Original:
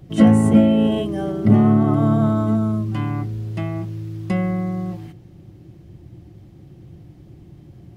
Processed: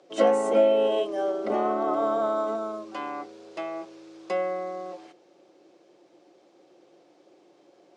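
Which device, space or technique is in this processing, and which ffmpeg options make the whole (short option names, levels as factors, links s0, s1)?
phone speaker on a table: -af "highpass=f=420:w=0.5412,highpass=f=420:w=1.3066,equalizer=f=540:t=q:w=4:g=5,equalizer=f=1900:t=q:w=4:g=-6,equalizer=f=3000:t=q:w=4:g=-4,lowpass=f=7400:w=0.5412,lowpass=f=7400:w=1.3066"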